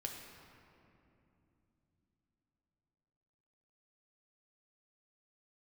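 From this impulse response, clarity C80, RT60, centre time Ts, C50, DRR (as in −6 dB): 4.5 dB, 3.0 s, 78 ms, 3.0 dB, 1.0 dB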